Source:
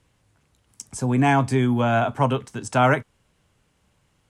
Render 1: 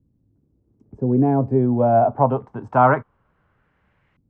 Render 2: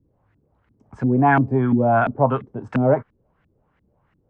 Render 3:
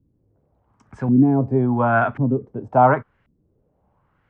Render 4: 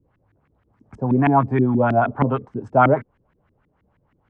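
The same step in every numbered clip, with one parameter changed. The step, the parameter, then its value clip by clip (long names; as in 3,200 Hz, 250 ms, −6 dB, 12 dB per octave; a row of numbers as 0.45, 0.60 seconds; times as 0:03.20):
auto-filter low-pass, speed: 0.24, 2.9, 0.92, 6.3 Hertz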